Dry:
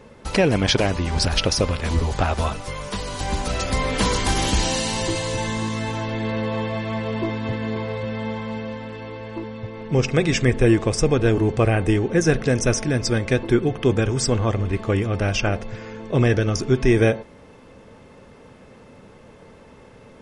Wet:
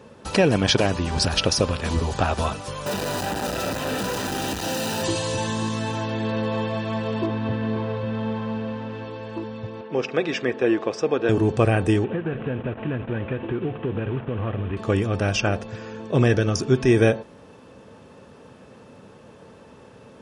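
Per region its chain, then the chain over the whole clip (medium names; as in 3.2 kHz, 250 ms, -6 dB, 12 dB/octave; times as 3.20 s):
2.86–5.04 s: one-bit comparator + treble shelf 2.8 kHz -8 dB + comb of notches 1.1 kHz
7.26–9.04 s: jump at every zero crossing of -39 dBFS + distance through air 200 m + doubling 45 ms -14 dB
9.81–11.29 s: high-pass 340 Hz + distance through air 190 m
12.04–14.77 s: CVSD coder 16 kbps + compression 12:1, threshold -21 dBFS
whole clip: high-pass 82 Hz; band-stop 2.1 kHz, Q 8.7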